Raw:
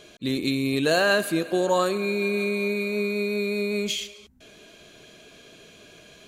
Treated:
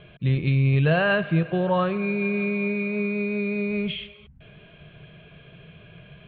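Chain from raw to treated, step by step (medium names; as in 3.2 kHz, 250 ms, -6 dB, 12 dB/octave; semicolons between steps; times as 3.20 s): steep low-pass 3.2 kHz 48 dB/octave; resonant low shelf 200 Hz +9 dB, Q 3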